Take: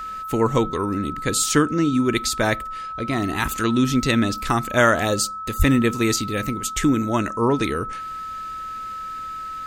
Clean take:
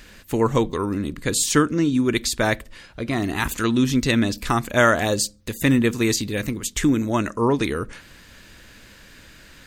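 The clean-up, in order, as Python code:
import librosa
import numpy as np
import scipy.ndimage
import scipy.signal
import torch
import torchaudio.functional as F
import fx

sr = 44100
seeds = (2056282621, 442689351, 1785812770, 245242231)

y = fx.notch(x, sr, hz=1300.0, q=30.0)
y = fx.fix_deplosive(y, sr, at_s=(5.58,))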